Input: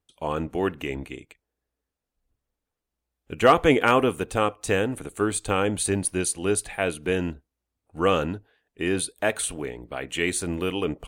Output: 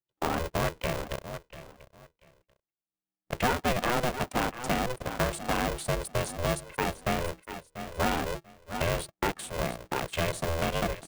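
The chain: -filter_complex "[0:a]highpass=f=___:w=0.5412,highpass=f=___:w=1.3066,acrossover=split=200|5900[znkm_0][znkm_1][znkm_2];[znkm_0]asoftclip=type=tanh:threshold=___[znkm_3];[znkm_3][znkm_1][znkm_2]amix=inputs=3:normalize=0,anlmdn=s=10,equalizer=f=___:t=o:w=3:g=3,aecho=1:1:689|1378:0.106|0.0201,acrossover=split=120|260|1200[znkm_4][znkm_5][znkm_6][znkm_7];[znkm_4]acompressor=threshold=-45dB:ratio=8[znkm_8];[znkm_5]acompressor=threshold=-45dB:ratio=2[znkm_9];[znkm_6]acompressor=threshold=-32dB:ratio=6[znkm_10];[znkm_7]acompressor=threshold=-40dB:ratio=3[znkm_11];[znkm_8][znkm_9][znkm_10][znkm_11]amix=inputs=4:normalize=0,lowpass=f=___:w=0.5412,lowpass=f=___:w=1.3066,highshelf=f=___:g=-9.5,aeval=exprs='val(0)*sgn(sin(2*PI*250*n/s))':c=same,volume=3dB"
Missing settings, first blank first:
74, 74, -36dB, 350, 11000, 11000, 8300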